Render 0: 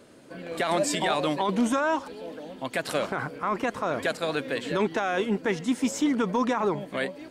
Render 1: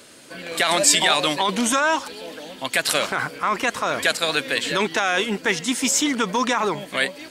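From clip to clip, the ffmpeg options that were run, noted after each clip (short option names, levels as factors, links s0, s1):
-af "tiltshelf=f=1400:g=-8,volume=2.51"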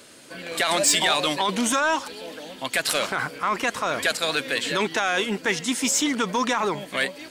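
-af "asoftclip=type=tanh:threshold=0.335,volume=0.841"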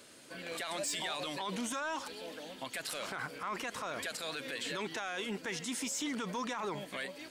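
-af "alimiter=limit=0.0841:level=0:latency=1:release=36,volume=0.398"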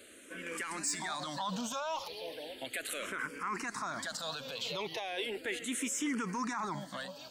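-filter_complex "[0:a]asplit=2[s0][s1];[s1]afreqshift=-0.36[s2];[s0][s2]amix=inputs=2:normalize=1,volume=1.5"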